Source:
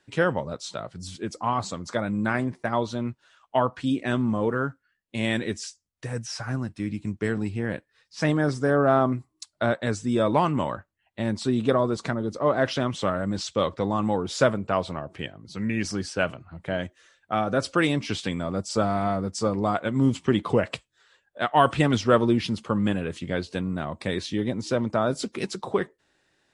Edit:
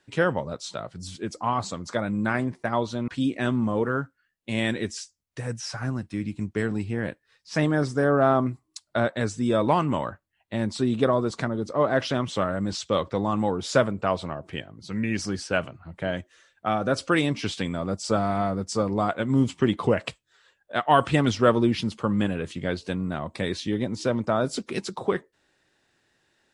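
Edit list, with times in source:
0:03.08–0:03.74: remove

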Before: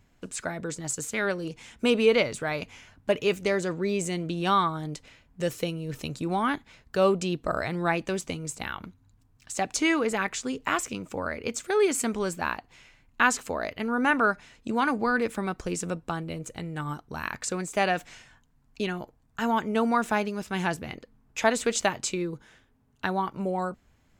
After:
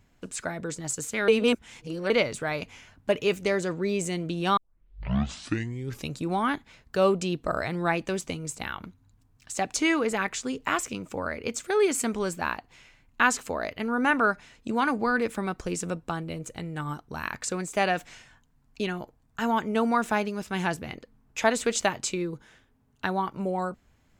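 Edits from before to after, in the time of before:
0:01.28–0:02.10: reverse
0:04.57: tape start 1.53 s

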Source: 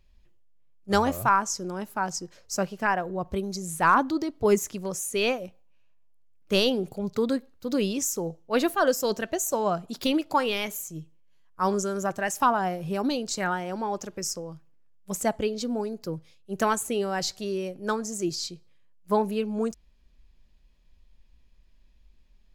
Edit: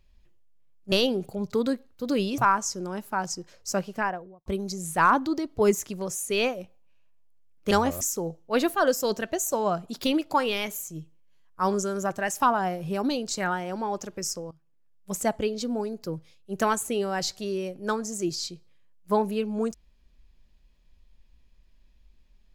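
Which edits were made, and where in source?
0:00.92–0:01.22: swap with 0:06.55–0:08.01
0:02.72–0:03.30: fade out and dull
0:14.51–0:15.12: fade in, from −17 dB

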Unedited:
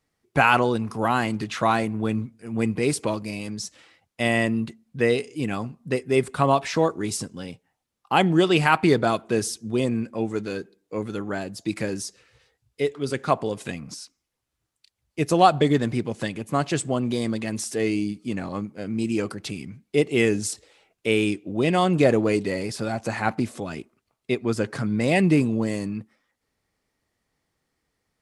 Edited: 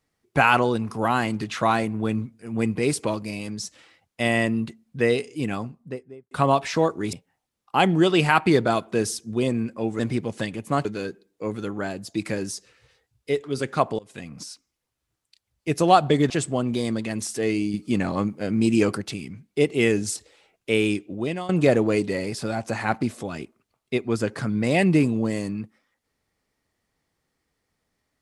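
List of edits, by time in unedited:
0:05.45–0:06.31: fade out and dull
0:07.13–0:07.50: remove
0:13.50–0:13.94: fade in, from −23.5 dB
0:15.81–0:16.67: move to 0:10.36
0:18.11–0:19.39: clip gain +5.5 dB
0:21.41–0:21.86: fade out, to −18 dB

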